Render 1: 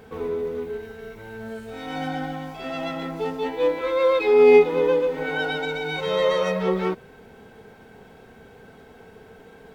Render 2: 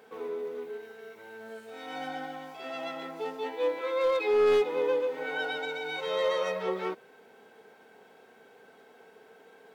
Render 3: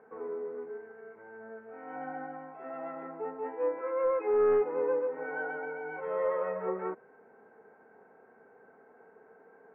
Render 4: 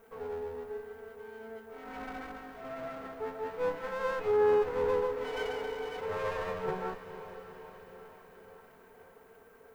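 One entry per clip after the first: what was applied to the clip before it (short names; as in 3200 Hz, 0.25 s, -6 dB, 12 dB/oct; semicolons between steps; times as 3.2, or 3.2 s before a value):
HPF 360 Hz 12 dB/oct; overloaded stage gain 14 dB; gain -6 dB
inverse Chebyshev low-pass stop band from 3400 Hz, stop band 40 dB; gain -2 dB
minimum comb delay 4.4 ms; added noise violet -72 dBFS; diffused feedback echo 0.483 s, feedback 62%, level -12 dB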